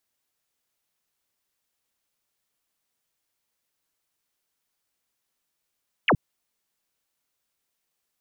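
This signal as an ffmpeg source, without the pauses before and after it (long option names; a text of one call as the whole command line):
ffmpeg -f lavfi -i "aevalsrc='0.168*clip(t/0.002,0,1)*clip((0.07-t)/0.002,0,1)*sin(2*PI*3300*0.07/log(100/3300)*(exp(log(100/3300)*t/0.07)-1))':duration=0.07:sample_rate=44100" out.wav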